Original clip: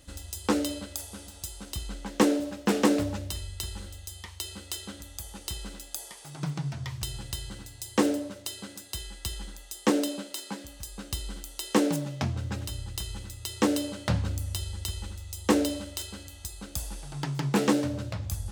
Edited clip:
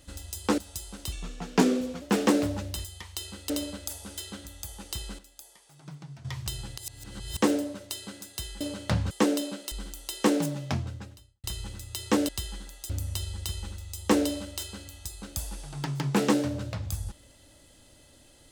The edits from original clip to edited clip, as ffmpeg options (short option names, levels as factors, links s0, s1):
-filter_complex "[0:a]asplit=17[s0][s1][s2][s3][s4][s5][s6][s7][s8][s9][s10][s11][s12][s13][s14][s15][s16];[s0]atrim=end=0.582[s17];[s1]atrim=start=1.258:end=1.804[s18];[s2]atrim=start=1.8:end=2.58,asetpts=PTS-STARTPTS,asetrate=38367,aresample=44100[s19];[s3]atrim=start=2.576:end=3.412[s20];[s4]atrim=start=4.078:end=4.732[s21];[s5]atrim=start=0.578:end=1.262[s22];[s6]atrim=start=4.728:end=5.742[s23];[s7]atrim=start=5.738:end=6.802,asetpts=PTS-STARTPTS,volume=0.266[s24];[s8]atrim=start=6.798:end=7.332[s25];[s9]atrim=start=7.328:end=7.922,asetpts=PTS-STARTPTS,areverse[s26];[s10]atrim=start=7.918:end=9.162[s27];[s11]atrim=start=13.788:end=14.292[s28];[s12]atrim=start=9.768:end=10.382[s29];[s13]atrim=start=11.218:end=12.94,asetpts=PTS-STARTPTS,afade=t=out:st=1.042:d=0.68:c=qua[s30];[s14]atrim=start=12.94:end=13.792,asetpts=PTS-STARTPTS,afade=t=in:d=0.004:c=hsin[s31];[s15]atrim=start=9.158:end=9.772[s32];[s16]atrim=start=14.288[s33];[s17][s18]acrossfade=d=0.004:c1=hsin:c2=hsin[s34];[s34][s19]acrossfade=d=0.004:c1=hsin:c2=hsin[s35];[s35][s20]acrossfade=d=0.004:c1=hsin:c2=hsin[s36];[s36][s21]acrossfade=d=0.004:c1=hsin:c2=hsin[s37];[s37][s22]acrossfade=d=0.004:c1=hsin:c2=hsin[s38];[s38][s23]acrossfade=d=0.004:c1=hsin:c2=hsin[s39];[s39][s24]acrossfade=d=0.004:c1=hsin:c2=hsin[s40];[s40][s25]acrossfade=d=0.004:c1=hsin:c2=hsin[s41];[s41][s26]acrossfade=d=0.004:c1=hsin:c2=hsin[s42];[s42][s27]acrossfade=d=0.004:c1=hsin:c2=hsin[s43];[s43][s28]acrossfade=d=0.004:c1=hsin:c2=hsin[s44];[s44][s29]acrossfade=d=0.004:c1=hsin:c2=hsin[s45];[s30][s31]concat=n=2:v=0:a=1[s46];[s45][s46]acrossfade=d=0.004:c1=hsin:c2=hsin[s47];[s47][s32]acrossfade=d=0.004:c1=hsin:c2=hsin[s48];[s48][s33]acrossfade=d=0.004:c1=hsin:c2=hsin"